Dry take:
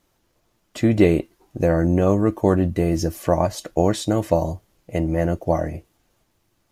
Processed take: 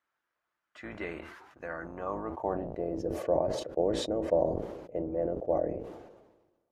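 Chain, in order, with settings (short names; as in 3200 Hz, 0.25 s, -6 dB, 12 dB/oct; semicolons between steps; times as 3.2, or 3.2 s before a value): octaver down 2 oct, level +3 dB; band-pass sweep 1500 Hz -> 490 Hz, 1.67–3.04; sustainer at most 48 dB/s; gain -6 dB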